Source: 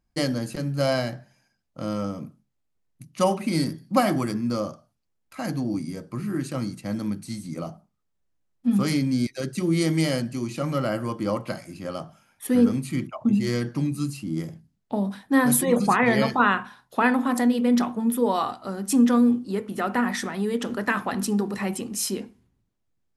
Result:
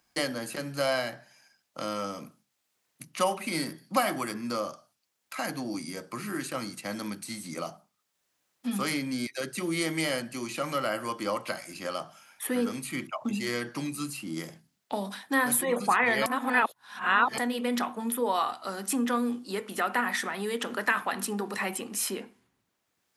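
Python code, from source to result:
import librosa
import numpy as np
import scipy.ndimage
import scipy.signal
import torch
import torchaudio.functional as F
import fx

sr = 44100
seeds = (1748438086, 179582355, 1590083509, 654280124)

y = fx.edit(x, sr, fx.reverse_span(start_s=16.26, length_s=1.12), tone=tone)
y = fx.highpass(y, sr, hz=1200.0, slope=6)
y = fx.dynamic_eq(y, sr, hz=5600.0, q=1.1, threshold_db=-49.0, ratio=4.0, max_db=-7)
y = fx.band_squash(y, sr, depth_pct=40)
y = y * 10.0 ** (3.5 / 20.0)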